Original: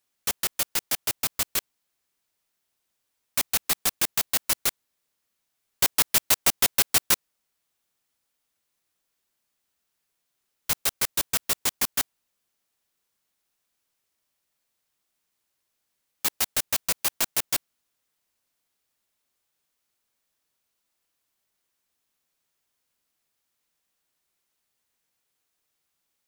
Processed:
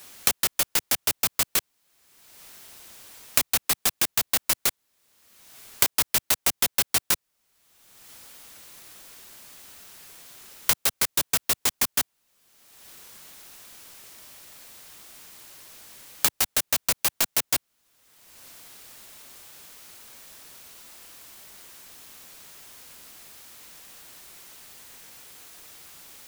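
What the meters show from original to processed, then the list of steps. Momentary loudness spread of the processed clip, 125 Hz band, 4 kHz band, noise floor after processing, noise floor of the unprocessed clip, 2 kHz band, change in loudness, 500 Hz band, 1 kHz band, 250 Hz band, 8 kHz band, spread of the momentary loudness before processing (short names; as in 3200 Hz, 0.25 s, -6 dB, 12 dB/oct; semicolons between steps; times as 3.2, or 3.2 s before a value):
4 LU, +0.5 dB, +1.0 dB, -77 dBFS, -79 dBFS, +1.0 dB, +1.0 dB, +1.0 dB, +1.0 dB, +0.5 dB, +1.0 dB, 8 LU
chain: three-band squash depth 100%; gain +1 dB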